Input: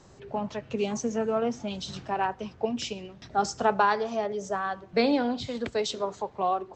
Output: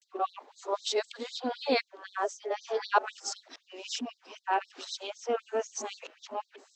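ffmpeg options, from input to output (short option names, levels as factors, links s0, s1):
-af "areverse,afftfilt=real='re*gte(b*sr/1024,220*pow(3700/220,0.5+0.5*sin(2*PI*3.9*pts/sr)))':imag='im*gte(b*sr/1024,220*pow(3700/220,0.5+0.5*sin(2*PI*3.9*pts/sr)))':win_size=1024:overlap=0.75"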